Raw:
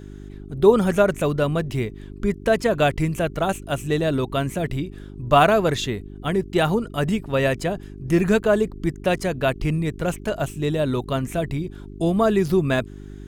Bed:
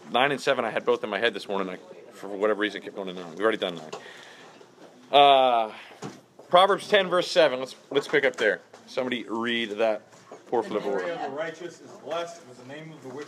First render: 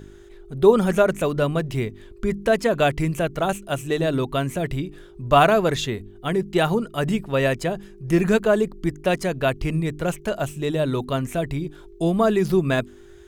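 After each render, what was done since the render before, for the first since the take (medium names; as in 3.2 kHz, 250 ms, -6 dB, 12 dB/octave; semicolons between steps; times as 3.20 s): de-hum 50 Hz, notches 6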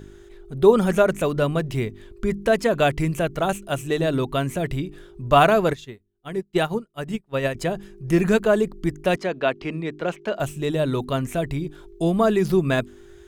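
5.73–7.55 s: upward expansion 2.5:1, over -38 dBFS; 9.16–10.40 s: three-band isolator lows -22 dB, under 190 Hz, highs -21 dB, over 5.2 kHz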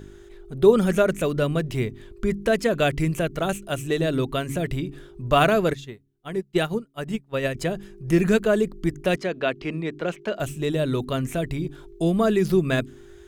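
de-hum 138.2 Hz, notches 2; dynamic bell 890 Hz, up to -7 dB, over -36 dBFS, Q 1.7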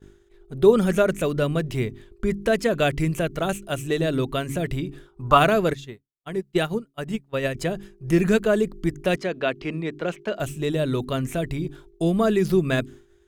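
expander -36 dBFS; 5.07–5.37 s: time-frequency box 750–1500 Hz +10 dB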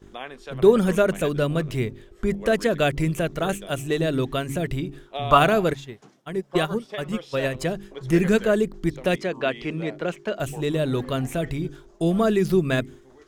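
add bed -14.5 dB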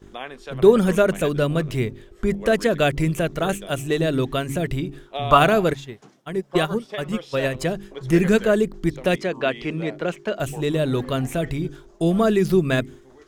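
trim +2 dB; peak limiter -1 dBFS, peak gain reduction 1 dB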